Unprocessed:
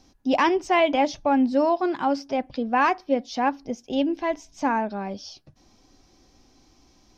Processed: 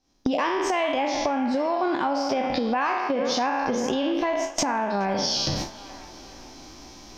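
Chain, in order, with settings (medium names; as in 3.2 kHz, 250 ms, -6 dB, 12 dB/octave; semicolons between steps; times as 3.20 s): spectral sustain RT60 0.65 s; recorder AGC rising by 71 dB/s; gate with hold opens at -12 dBFS; bass shelf 210 Hz -5.5 dB; compression 3:1, threshold -29 dBFS, peak gain reduction 12 dB; on a send: feedback echo behind a band-pass 423 ms, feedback 51%, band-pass 1.4 kHz, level -12 dB; on the sum: trim +4 dB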